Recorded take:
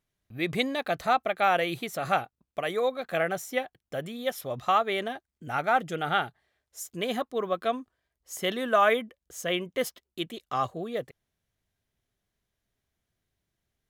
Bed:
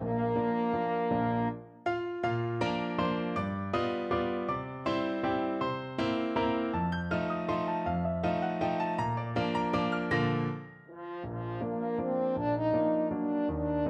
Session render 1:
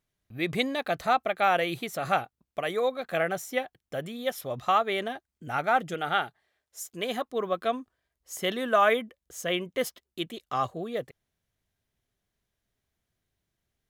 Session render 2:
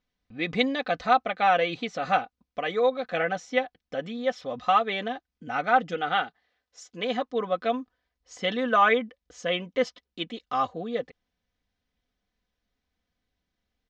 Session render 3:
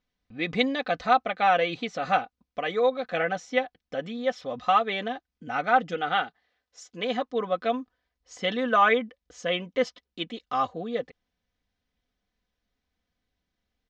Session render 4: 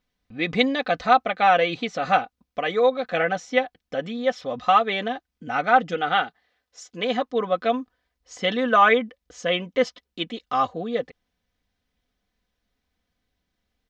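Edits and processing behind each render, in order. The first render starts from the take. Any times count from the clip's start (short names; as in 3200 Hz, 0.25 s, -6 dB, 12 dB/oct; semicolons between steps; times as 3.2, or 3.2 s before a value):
5.94–7.25 low shelf 180 Hz -9 dB
inverse Chebyshev low-pass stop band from 10000 Hz, stop band 40 dB; comb 4 ms, depth 67%
nothing audible
gain +4 dB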